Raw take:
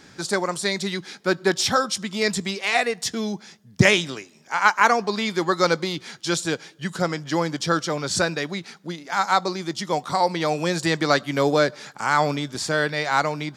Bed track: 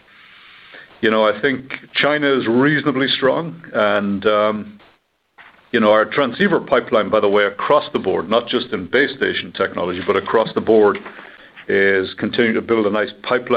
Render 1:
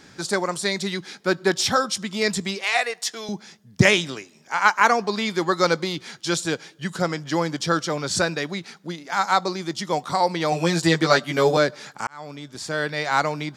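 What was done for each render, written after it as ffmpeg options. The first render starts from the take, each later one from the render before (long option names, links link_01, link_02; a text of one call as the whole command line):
ffmpeg -i in.wav -filter_complex "[0:a]asettb=1/sr,asplit=3[link_01][link_02][link_03];[link_01]atrim=end=2.644[link_04];[link_02]atrim=start=2.64:end=3.29,asetpts=PTS-STARTPTS,afade=type=in:duration=0.004:curve=qsin,afade=type=out:start_time=0.646:duration=0.004:curve=qsin,highpass=570[link_05];[link_03]atrim=start=3.286[link_06];[link_04][link_05]acrossfade=duration=0.004:curve1=hsin:curve2=qsin[link_07];[link_07][link_06]acrossfade=duration=0.004:curve1=qsin:curve2=hsin,asettb=1/sr,asplit=3[link_08][link_09][link_10];[link_08]atrim=end=10.514[link_11];[link_09]atrim=start=10.51:end=11.57,asetpts=PTS-STARTPTS,afade=type=in:duration=0.004:curve=qsin,afade=type=out:start_time=1.056:duration=0.004:curve=qsin,asplit=2[link_12][link_13];[link_13]adelay=12,volume=-2dB[link_14];[link_12][link_14]amix=inputs=2:normalize=0,atrim=end_sample=46746[link_15];[link_10]atrim=start=11.566[link_16];[link_11][link_15]acrossfade=duration=0.004:curve1=hsin:curve2=qsin[link_17];[link_17][link_16]acrossfade=duration=0.004:curve1=qsin:curve2=hsin,asplit=2[link_18][link_19];[link_18]atrim=end=12.07,asetpts=PTS-STARTPTS,afade=type=out:start_time=12.066:duration=0.004:curve=hsin[link_20];[link_19]atrim=start=12.07,asetpts=PTS-STARTPTS,afade=type=in:duration=1.05[link_21];[link_20][link_21]concat=n=2:v=0:a=1" out.wav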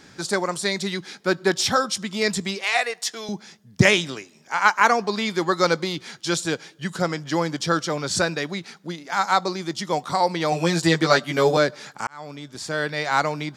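ffmpeg -i in.wav -af anull out.wav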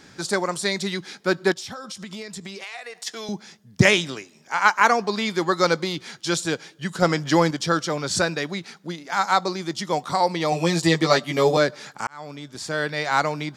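ffmpeg -i in.wav -filter_complex "[0:a]asplit=3[link_01][link_02][link_03];[link_01]afade=type=out:start_time=1.52:duration=0.02[link_04];[link_02]acompressor=threshold=-31dB:ratio=16:attack=3.2:release=140:knee=1:detection=peak,afade=type=in:start_time=1.52:duration=0.02,afade=type=out:start_time=3.06:duration=0.02[link_05];[link_03]afade=type=in:start_time=3.06:duration=0.02[link_06];[link_04][link_05][link_06]amix=inputs=3:normalize=0,asettb=1/sr,asplit=3[link_07][link_08][link_09];[link_07]atrim=end=7.024[link_10];[link_08]atrim=start=7.02:end=7.51,asetpts=PTS-STARTPTS,afade=type=in:duration=0.004:curve=qsin,afade=type=out:start_time=0.486:duration=0.004:curve=qsin,acontrast=35[link_11];[link_09]atrim=start=7.506[link_12];[link_10][link_11]acrossfade=duration=0.004:curve1=hsin:curve2=qsin[link_13];[link_13][link_12]acrossfade=duration=0.004:curve1=qsin:curve2=hsin,asettb=1/sr,asplit=3[link_14][link_15][link_16];[link_14]atrim=end=10.334[link_17];[link_15]atrim=start=10.33:end=11.61,asetpts=PTS-STARTPTS,afade=type=in:duration=0.004:curve=qsin,afade=type=out:start_time=1.276:duration=0.004:curve=qsin,bandreject=frequency=1500:width=5.4[link_18];[link_16]atrim=start=11.606[link_19];[link_17][link_18]acrossfade=duration=0.004:curve1=hsin:curve2=qsin[link_20];[link_20][link_19]acrossfade=duration=0.004:curve1=qsin:curve2=hsin" out.wav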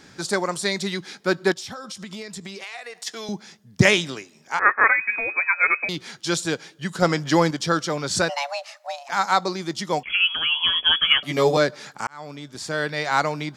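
ffmpeg -i in.wav -filter_complex "[0:a]asettb=1/sr,asplit=3[link_01][link_02][link_03];[link_01]atrim=end=4.594[link_04];[link_02]atrim=start=4.59:end=5.89,asetpts=PTS-STARTPTS,afade=type=in:duration=0.004:curve=qsin,afade=type=out:start_time=1.296:duration=0.004:curve=qsin,lowpass=frequency=2300:width_type=q:width=0.5098,lowpass=frequency=2300:width_type=q:width=0.6013,lowpass=frequency=2300:width_type=q:width=0.9,lowpass=frequency=2300:width_type=q:width=2.563,afreqshift=-2700[link_05];[link_03]atrim=start=5.886[link_06];[link_04][link_05]acrossfade=duration=0.004:curve1=hsin:curve2=qsin[link_07];[link_07][link_06]acrossfade=duration=0.004:curve1=qsin:curve2=hsin,asplit=3[link_08][link_09][link_10];[link_08]afade=type=out:start_time=8.28:duration=0.02[link_11];[link_09]afreqshift=420,afade=type=in:start_time=8.28:duration=0.02,afade=type=out:start_time=9.08:duration=0.02[link_12];[link_10]afade=type=in:start_time=9.08:duration=0.02[link_13];[link_11][link_12][link_13]amix=inputs=3:normalize=0,asettb=1/sr,asplit=3[link_14][link_15][link_16];[link_14]atrim=end=10.034[link_17];[link_15]atrim=start=10.03:end=11.23,asetpts=PTS-STARTPTS,afade=type=in:duration=0.004:curve=qsin,afade=type=out:start_time=1.196:duration=0.004:curve=qsin,lowpass=frequency=3000:width_type=q:width=0.5098,lowpass=frequency=3000:width_type=q:width=0.6013,lowpass=frequency=3000:width_type=q:width=0.9,lowpass=frequency=3000:width_type=q:width=2.563,afreqshift=-3500[link_18];[link_16]atrim=start=11.226[link_19];[link_17][link_18]acrossfade=duration=0.004:curve1=hsin:curve2=qsin[link_20];[link_20][link_19]acrossfade=duration=0.004:curve1=qsin:curve2=hsin" out.wav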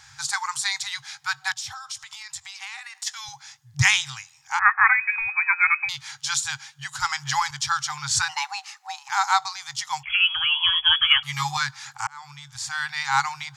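ffmpeg -i in.wav -af "afftfilt=real='re*(1-between(b*sr/4096,150,760))':imag='im*(1-between(b*sr/4096,150,760))':win_size=4096:overlap=0.75,equalizer=frequency=6800:width_type=o:width=0.53:gain=5.5" out.wav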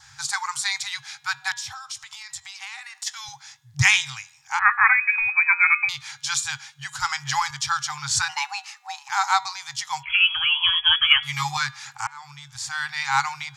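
ffmpeg -i in.wav -af "bandreject=frequency=239.7:width_type=h:width=4,bandreject=frequency=479.4:width_type=h:width=4,bandreject=frequency=719.1:width_type=h:width=4,bandreject=frequency=958.8:width_type=h:width=4,bandreject=frequency=1198.5:width_type=h:width=4,bandreject=frequency=1438.2:width_type=h:width=4,bandreject=frequency=1677.9:width_type=h:width=4,bandreject=frequency=1917.6:width_type=h:width=4,bandreject=frequency=2157.3:width_type=h:width=4,bandreject=frequency=2397:width_type=h:width=4,bandreject=frequency=2636.7:width_type=h:width=4,bandreject=frequency=2876.4:width_type=h:width=4,bandreject=frequency=3116.1:width_type=h:width=4,bandreject=frequency=3355.8:width_type=h:width=4,bandreject=frequency=3595.5:width_type=h:width=4,bandreject=frequency=3835.2:width_type=h:width=4,bandreject=frequency=4074.9:width_type=h:width=4,adynamicequalizer=threshold=0.0158:dfrequency=2400:dqfactor=6.1:tfrequency=2400:tqfactor=6.1:attack=5:release=100:ratio=0.375:range=2.5:mode=boostabove:tftype=bell" out.wav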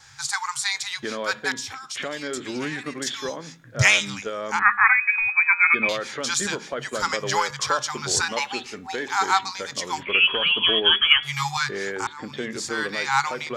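ffmpeg -i in.wav -i bed.wav -filter_complex "[1:a]volume=-15.5dB[link_01];[0:a][link_01]amix=inputs=2:normalize=0" out.wav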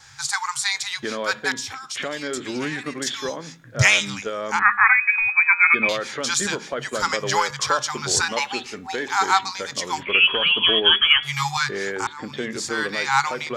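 ffmpeg -i in.wav -af "volume=2dB,alimiter=limit=-3dB:level=0:latency=1" out.wav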